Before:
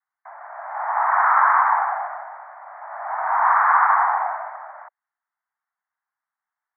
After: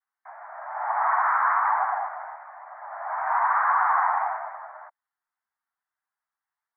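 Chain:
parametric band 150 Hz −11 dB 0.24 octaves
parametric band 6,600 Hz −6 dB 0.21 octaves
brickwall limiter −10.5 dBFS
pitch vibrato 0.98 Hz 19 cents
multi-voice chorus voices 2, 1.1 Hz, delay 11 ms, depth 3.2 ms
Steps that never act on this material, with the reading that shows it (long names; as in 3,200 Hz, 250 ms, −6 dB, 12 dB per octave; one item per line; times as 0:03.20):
parametric band 150 Hz: nothing at its input below 570 Hz
parametric band 6,600 Hz: nothing at its input above 2,300 Hz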